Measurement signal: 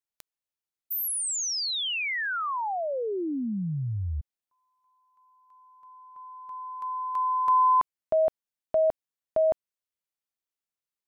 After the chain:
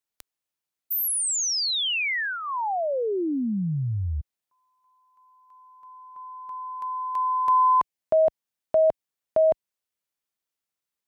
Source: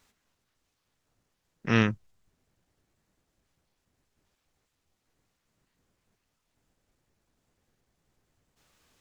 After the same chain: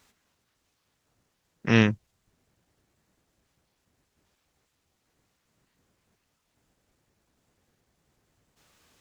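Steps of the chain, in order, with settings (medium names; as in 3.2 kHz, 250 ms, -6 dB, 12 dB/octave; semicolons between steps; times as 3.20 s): high-pass 46 Hz 6 dB/octave; dynamic bell 1.3 kHz, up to -8 dB, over -46 dBFS, Q 3.3; trim +4 dB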